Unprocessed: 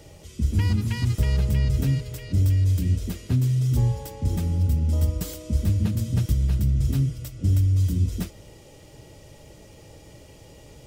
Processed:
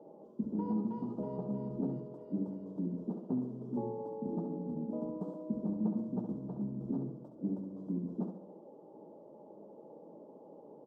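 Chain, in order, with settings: elliptic band-pass 200–940 Hz, stop band 40 dB; feedback echo 68 ms, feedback 44%, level -7 dB; gain -2 dB

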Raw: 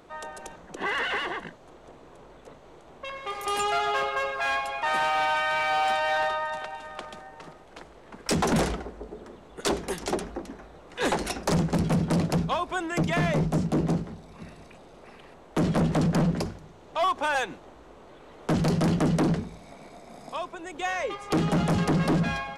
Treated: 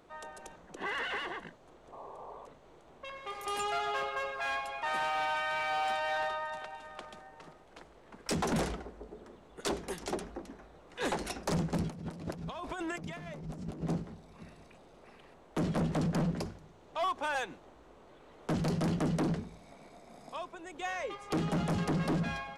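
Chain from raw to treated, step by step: 1.92–2.46 painted sound noise 380–1200 Hz -40 dBFS; 11.9–13.82 negative-ratio compressor -34 dBFS, ratio -1; gain -7.5 dB

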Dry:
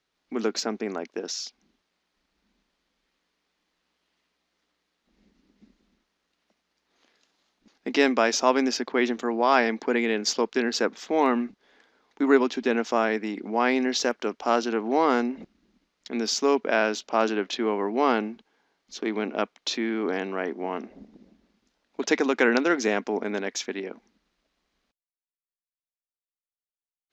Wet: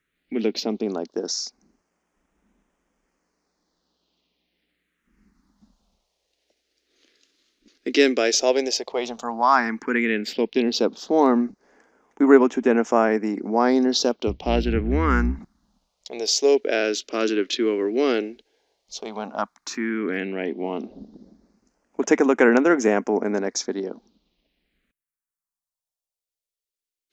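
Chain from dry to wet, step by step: 14.27–15.39 octaver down 2 oct, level 0 dB; phaser stages 4, 0.1 Hz, lowest notch 140–4100 Hz; gain +5 dB

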